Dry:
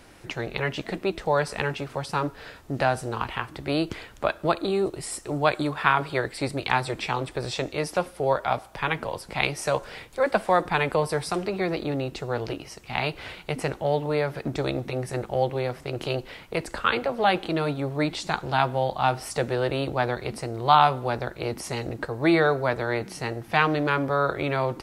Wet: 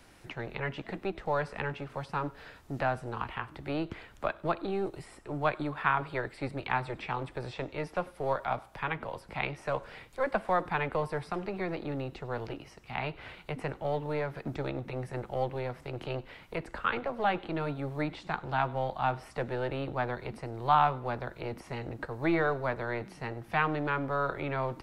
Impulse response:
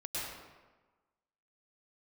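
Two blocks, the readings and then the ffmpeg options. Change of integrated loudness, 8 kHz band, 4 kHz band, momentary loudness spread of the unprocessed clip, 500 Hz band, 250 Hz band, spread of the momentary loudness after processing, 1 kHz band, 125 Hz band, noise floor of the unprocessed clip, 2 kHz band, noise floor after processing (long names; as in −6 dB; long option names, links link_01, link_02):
−7.5 dB, below −20 dB, −13.0 dB, 9 LU, −8.0 dB, −7.5 dB, 10 LU, −6.5 dB, −6.5 dB, −48 dBFS, −7.0 dB, −55 dBFS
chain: -filter_complex "[0:a]acrossover=split=340|540|2900[link_01][link_02][link_03][link_04];[link_02]aeval=exprs='max(val(0),0)':channel_layout=same[link_05];[link_04]acompressor=threshold=-54dB:ratio=6[link_06];[link_01][link_05][link_03][link_06]amix=inputs=4:normalize=0[link_07];[1:a]atrim=start_sample=2205,afade=type=out:start_time=0.14:duration=0.01,atrim=end_sample=6615[link_08];[link_07][link_08]afir=irnorm=-1:irlink=0"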